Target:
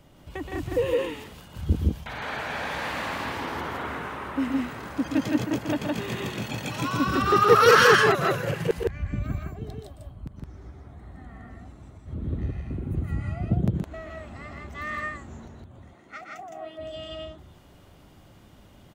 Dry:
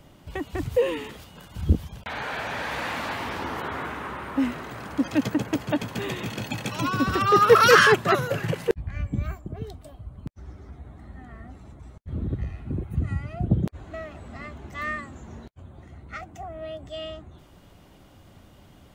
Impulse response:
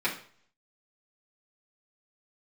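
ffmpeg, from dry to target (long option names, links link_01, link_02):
-filter_complex "[0:a]asettb=1/sr,asplit=3[link_01][link_02][link_03];[link_01]atrim=end=15.774[link_04];[link_02]atrim=start=15.77:end=16.79,asetpts=PTS-STARTPTS,afade=type=in:duration=0.004:curve=qsin,afade=type=out:start_time=1.016:duration=0.004:curve=qsin,highpass=270[link_05];[link_03]atrim=start=16.786[link_06];[link_04][link_05]acrossfade=duration=0.004:curve1=hsin:curve2=qsin[link_07];[link_07][link_06]acrossfade=duration=0.004:curve1=qsin:curve2=hsin,aecho=1:1:122.4|163.3:0.447|0.891,volume=-3.5dB"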